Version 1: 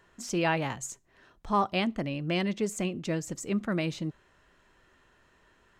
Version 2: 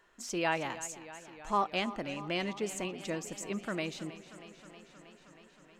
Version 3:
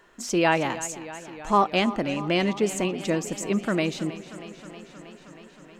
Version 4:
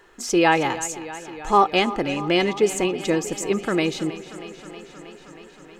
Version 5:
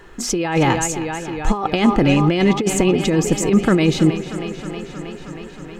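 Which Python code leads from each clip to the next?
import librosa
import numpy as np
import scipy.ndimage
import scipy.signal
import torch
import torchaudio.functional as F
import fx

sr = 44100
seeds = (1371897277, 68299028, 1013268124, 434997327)

y1 = fx.peak_eq(x, sr, hz=96.0, db=-13.5, octaves=2.0)
y1 = fx.echo_warbled(y1, sr, ms=316, feedback_pct=76, rate_hz=2.8, cents=58, wet_db=-15.5)
y1 = y1 * 10.0 ** (-2.5 / 20.0)
y2 = fx.peak_eq(y1, sr, hz=240.0, db=4.5, octaves=2.6)
y2 = y2 * 10.0 ** (8.0 / 20.0)
y3 = y2 + 0.45 * np.pad(y2, (int(2.4 * sr / 1000.0), 0))[:len(y2)]
y3 = y3 * 10.0 ** (3.0 / 20.0)
y4 = fx.over_compress(y3, sr, threshold_db=-23.0, ratio=-1.0)
y4 = fx.bass_treble(y4, sr, bass_db=11, treble_db=-2)
y4 = y4 * 10.0 ** (4.5 / 20.0)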